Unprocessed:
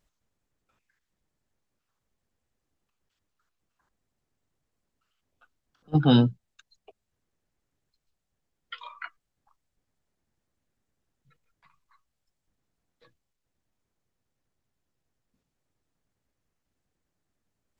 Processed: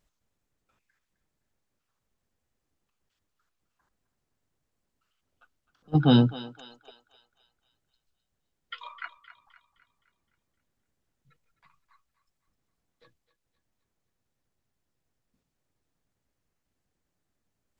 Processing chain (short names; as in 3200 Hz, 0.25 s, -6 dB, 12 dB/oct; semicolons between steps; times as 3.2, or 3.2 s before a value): thinning echo 0.259 s, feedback 50%, high-pass 640 Hz, level -13 dB